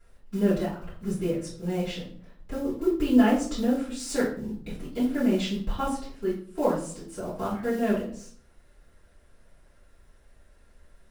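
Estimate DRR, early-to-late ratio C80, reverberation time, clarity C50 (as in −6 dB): −10.0 dB, 10.5 dB, 0.55 s, 5.5 dB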